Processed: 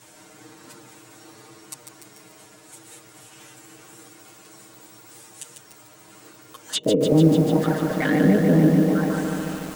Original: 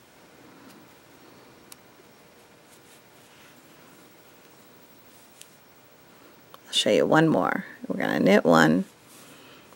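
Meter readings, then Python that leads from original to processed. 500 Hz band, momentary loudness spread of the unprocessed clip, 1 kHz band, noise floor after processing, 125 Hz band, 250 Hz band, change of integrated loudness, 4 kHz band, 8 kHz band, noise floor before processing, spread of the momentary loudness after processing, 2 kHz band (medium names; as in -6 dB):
+1.0 dB, 13 LU, -5.0 dB, -50 dBFS, +10.0 dB, +6.0 dB, +2.5 dB, -3.0 dB, +3.5 dB, -54 dBFS, 10 LU, -4.0 dB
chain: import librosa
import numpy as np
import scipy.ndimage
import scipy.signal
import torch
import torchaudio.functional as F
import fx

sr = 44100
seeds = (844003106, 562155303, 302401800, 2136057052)

y = fx.peak_eq(x, sr, hz=7900.0, db=9.5, octaves=0.77)
y = fx.echo_wet_lowpass(y, sr, ms=189, feedback_pct=55, hz=1900.0, wet_db=-9.0)
y = fx.env_flanger(y, sr, rest_ms=10.7, full_db=-19.5)
y = y + 0.86 * np.pad(y, (int(6.5 * sr / 1000.0), 0))[:len(y)]
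y = fx.env_lowpass_down(y, sr, base_hz=310.0, full_db=-15.5)
y = fx.high_shelf(y, sr, hz=11000.0, db=5.5)
y = fx.echo_crushed(y, sr, ms=147, feedback_pct=80, bits=7, wet_db=-5.0)
y = y * 10.0 ** (3.5 / 20.0)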